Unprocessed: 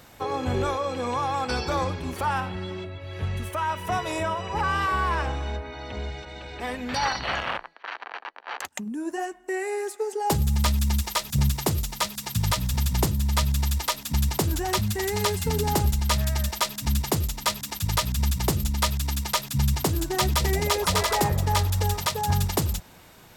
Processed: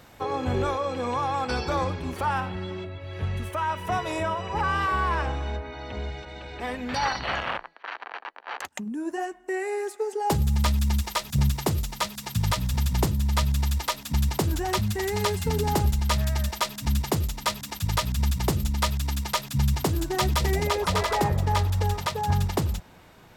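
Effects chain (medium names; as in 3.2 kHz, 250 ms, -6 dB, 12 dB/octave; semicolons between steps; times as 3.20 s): treble shelf 4.6 kHz -5.5 dB, from 20.67 s -11 dB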